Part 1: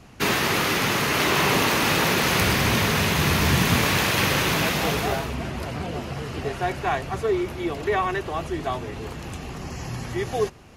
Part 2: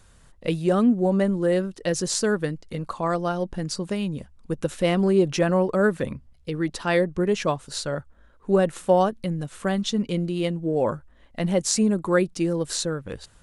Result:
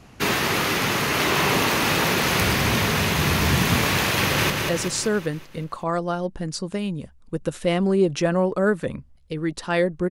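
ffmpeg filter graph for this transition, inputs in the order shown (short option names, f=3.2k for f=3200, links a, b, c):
-filter_complex "[0:a]apad=whole_dur=10.1,atrim=end=10.1,atrim=end=4.502[a];[1:a]atrim=start=1.668:end=7.27[b];[a][b]acrossfade=d=0.004:c1=hsin:c2=hsin,asplit=2[c][d];[d]afade=t=in:st=4.19:d=0.01,afade=t=out:st=4.5:d=0.01,aecho=0:1:190|380|570|760|950|1140|1330:0.630957|0.347027|0.190865|0.104976|0.0577365|0.0317551|0.0174653[e];[c][e]amix=inputs=2:normalize=0"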